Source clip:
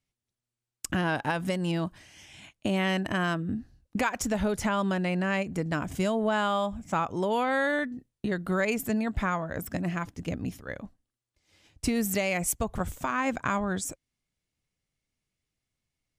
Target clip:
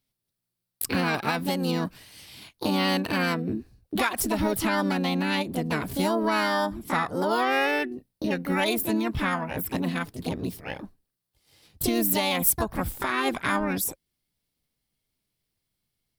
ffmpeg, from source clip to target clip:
-filter_complex "[0:a]asplit=3[a][b][c];[b]asetrate=58866,aresample=44100,atempo=0.749154,volume=-12dB[d];[c]asetrate=66075,aresample=44100,atempo=0.66742,volume=-2dB[e];[a][d][e]amix=inputs=3:normalize=0,aexciter=amount=1.6:drive=2.8:freq=3.8k"

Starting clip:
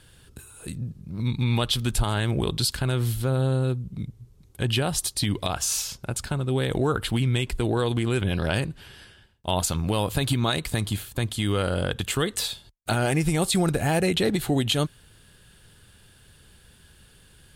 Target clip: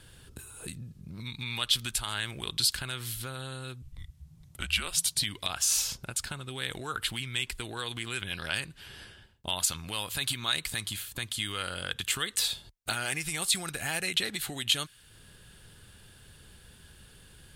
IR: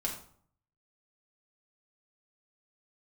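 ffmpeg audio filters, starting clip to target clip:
-filter_complex "[0:a]asettb=1/sr,asplit=3[a][b][c];[a]atrim=end=3.824[d];[b]atrim=start=3.82:end=5.19,asetpts=PTS-STARTPTS,afade=t=in:d=0.004:c=qsin,afade=t=out:st=1.366:d=0.004:c=qsin,afreqshift=-190[e];[c]atrim=start=5.186[f];[d][e]acrossfade=d=0.004:c1=hsin:c2=qsin[g];[g][f]acrossfade=d=0.004:c1=qsin:c2=hsin,acrossover=split=1300[h][i];[h]acompressor=threshold=-41dB:ratio=5[j];[j][i]amix=inputs=2:normalize=0"

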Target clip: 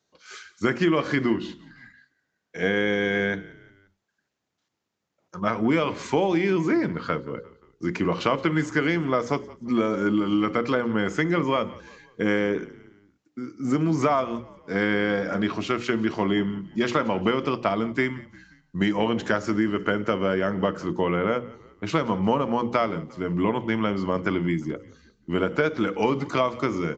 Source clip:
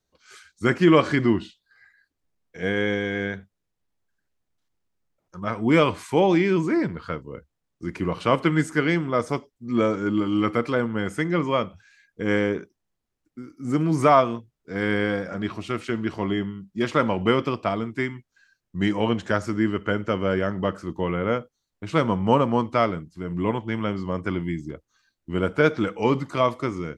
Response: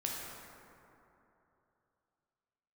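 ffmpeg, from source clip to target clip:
-filter_complex "[0:a]highpass=140,bandreject=f=60:t=h:w=6,bandreject=f=120:t=h:w=6,bandreject=f=180:t=h:w=6,bandreject=f=240:t=h:w=6,bandreject=f=300:t=h:w=6,bandreject=f=360:t=h:w=6,bandreject=f=420:t=h:w=6,bandreject=f=480:t=h:w=6,bandreject=f=540:t=h:w=6,acompressor=threshold=-25dB:ratio=6,asplit=2[a][b];[b]asplit=3[c][d][e];[c]adelay=176,afreqshift=-35,volume=-21dB[f];[d]adelay=352,afreqshift=-70,volume=-27.4dB[g];[e]adelay=528,afreqshift=-105,volume=-33.8dB[h];[f][g][h]amix=inputs=3:normalize=0[i];[a][i]amix=inputs=2:normalize=0,aresample=16000,aresample=44100,volume=6dB"

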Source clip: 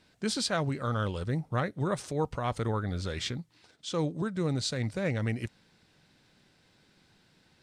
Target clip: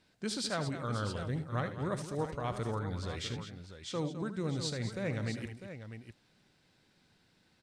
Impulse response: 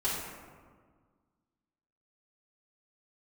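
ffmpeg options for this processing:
-af "aecho=1:1:76|209|650:0.266|0.266|0.299,volume=-5.5dB"

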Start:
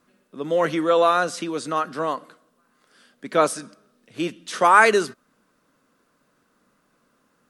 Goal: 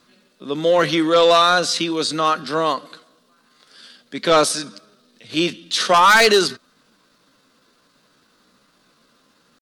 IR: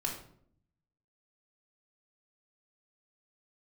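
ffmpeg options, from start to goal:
-af "atempo=0.78,equalizer=f=4.1k:w=1.3:g=13,aeval=exprs='0.944*(cos(1*acos(clip(val(0)/0.944,-1,1)))-cos(1*PI/2))+0.376*(cos(5*acos(clip(val(0)/0.944,-1,1)))-cos(5*PI/2))':c=same,volume=-4.5dB"

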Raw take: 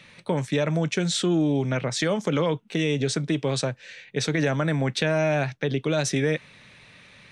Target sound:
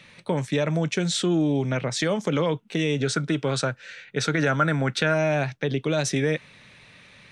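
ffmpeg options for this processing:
-filter_complex "[0:a]asettb=1/sr,asplit=3[a][b][c];[a]atrim=end=2.974[d];[b]atrim=start=2.97:end=5.14,asetpts=PTS-STARTPTS,afade=t=in:d=0.004:c=qsin,afade=t=out:st=2.166:d=0.004:c=qsin,equalizer=f=1.4k:t=o:w=0.28:g=13[e];[c]atrim=start=5.136[f];[d][e]acrossfade=d=0.004:c1=hsin:c2=qsin[g];[g][f]acrossfade=d=0.004:c1=qsin:c2=hsin"

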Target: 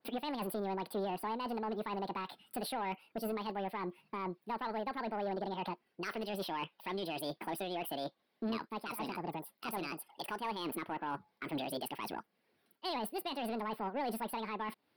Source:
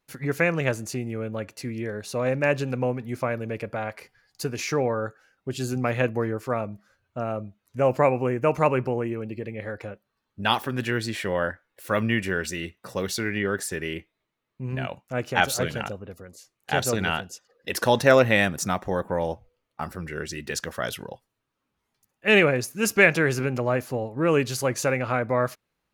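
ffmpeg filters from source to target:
-af "highpass=120,lowshelf=f=260:g=5.5,areverse,acompressor=threshold=-29dB:ratio=16,areverse,alimiter=level_in=3.5dB:limit=-24dB:level=0:latency=1:release=332,volume=-3.5dB,asoftclip=type=tanh:threshold=-32dB,asuperstop=centerf=4000:order=4:qfactor=1.6,asetrate=76440,aresample=44100,adynamicequalizer=threshold=0.00178:dfrequency=2100:dqfactor=0.7:tfrequency=2100:tqfactor=0.7:attack=5:release=100:ratio=0.375:range=2:mode=cutabove:tftype=highshelf,volume=2.5dB"

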